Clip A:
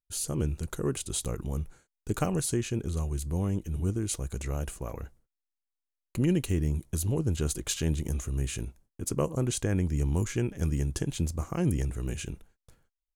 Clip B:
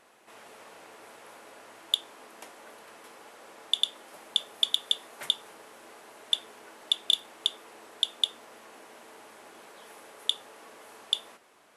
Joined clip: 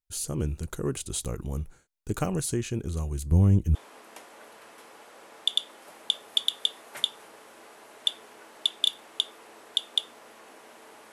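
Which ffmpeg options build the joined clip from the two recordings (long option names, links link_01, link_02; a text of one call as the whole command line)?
ffmpeg -i cue0.wav -i cue1.wav -filter_complex "[0:a]asettb=1/sr,asplit=3[link_01][link_02][link_03];[link_01]atrim=end=3.314[link_04];[link_02]atrim=start=3.31:end=3.75,asetpts=PTS-STARTPTS,afade=type=in:duration=0.004:curve=qsin,afade=type=out:start_time=0.436:duration=0.004:curve=qsin,equalizer=frequency=77:width=0.36:gain=11.5[link_05];[link_03]atrim=start=3.746[link_06];[link_04][link_05]acrossfade=duration=0.004:curve1=hsin:curve2=qsin[link_07];[link_07][link_06]acrossfade=duration=0.004:curve1=qsin:curve2=hsin,apad=whole_dur=11.12,atrim=end=11.12,atrim=end=3.752[link_08];[1:a]atrim=start=2.008:end=9.38[link_09];[link_08][link_09]acrossfade=duration=0.004:curve1=hsin:curve2=hsin" out.wav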